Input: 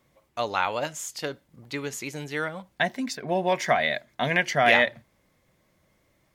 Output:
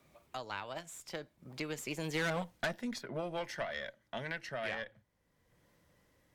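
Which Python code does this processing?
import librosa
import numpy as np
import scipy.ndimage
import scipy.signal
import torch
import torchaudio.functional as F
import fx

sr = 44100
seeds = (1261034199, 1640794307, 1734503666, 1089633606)

y = fx.doppler_pass(x, sr, speed_mps=26, closest_m=2.0, pass_at_s=2.33)
y = fx.tube_stage(y, sr, drive_db=37.0, bias=0.6)
y = fx.band_squash(y, sr, depth_pct=70)
y = y * librosa.db_to_amplitude(11.5)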